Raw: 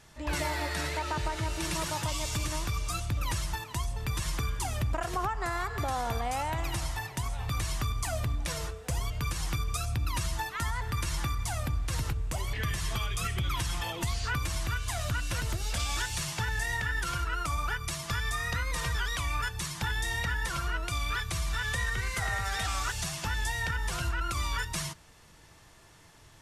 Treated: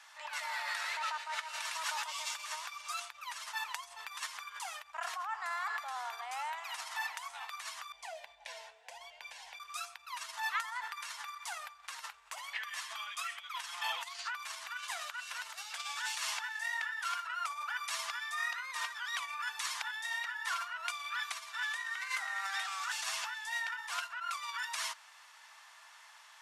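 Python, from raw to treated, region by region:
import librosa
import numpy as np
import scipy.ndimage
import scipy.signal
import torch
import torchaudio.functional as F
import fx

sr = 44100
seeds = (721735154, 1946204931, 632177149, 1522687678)

y = fx.chain(x, sr, fx.lowpass(hz=1200.0, slope=6),
    fx.fixed_phaser(hz=330.0, stages=6), at=(7.92, 9.6))
y = fx.over_compress(y, sr, threshold_db=-35.0, ratio=-1.0)
y = scipy.signal.sosfilt(scipy.signal.cheby2(4, 50, 340.0, 'highpass', fs=sr, output='sos'), y)
y = fx.high_shelf(y, sr, hz=6000.0, db=-10.0)
y = y * 10.0 ** (1.5 / 20.0)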